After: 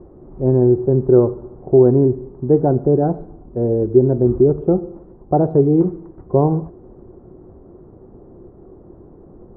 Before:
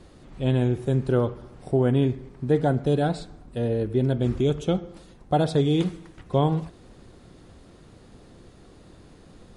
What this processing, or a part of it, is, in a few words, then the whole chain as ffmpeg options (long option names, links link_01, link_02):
under water: -af "lowpass=frequency=990:width=0.5412,lowpass=frequency=990:width=1.3066,equalizer=frequency=370:width_type=o:width=0.34:gain=10.5,volume=5dB"